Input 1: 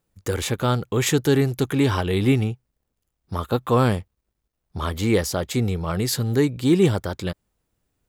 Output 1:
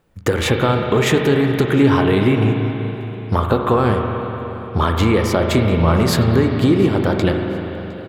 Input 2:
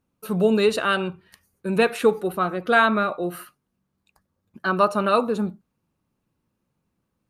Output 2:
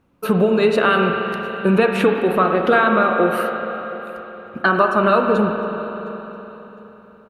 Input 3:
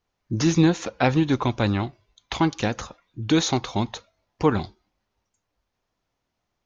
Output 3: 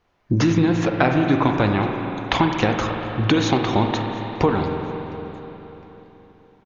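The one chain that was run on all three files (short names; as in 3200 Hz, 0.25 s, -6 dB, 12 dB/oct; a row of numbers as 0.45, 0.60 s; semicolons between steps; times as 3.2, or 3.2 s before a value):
tone controls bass -3 dB, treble -12 dB; compressor 6:1, threshold -29 dBFS; feedback echo 0.71 s, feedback 34%, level -23.5 dB; spring tank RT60 3.8 s, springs 36/47 ms, chirp 65 ms, DRR 2.5 dB; normalise peaks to -2 dBFS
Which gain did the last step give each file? +15.0, +15.0, +13.0 dB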